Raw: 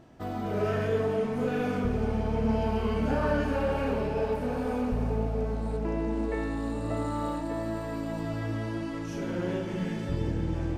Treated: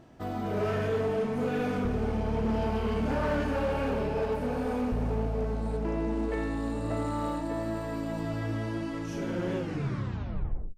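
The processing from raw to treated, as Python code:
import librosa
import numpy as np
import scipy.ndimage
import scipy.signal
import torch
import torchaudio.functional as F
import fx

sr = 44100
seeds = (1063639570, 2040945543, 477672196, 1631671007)

y = fx.tape_stop_end(x, sr, length_s=1.22)
y = np.clip(10.0 ** (24.0 / 20.0) * y, -1.0, 1.0) / 10.0 ** (24.0 / 20.0)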